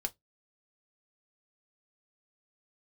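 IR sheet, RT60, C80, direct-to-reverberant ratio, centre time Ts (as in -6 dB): 0.15 s, 40.5 dB, 5.0 dB, 3 ms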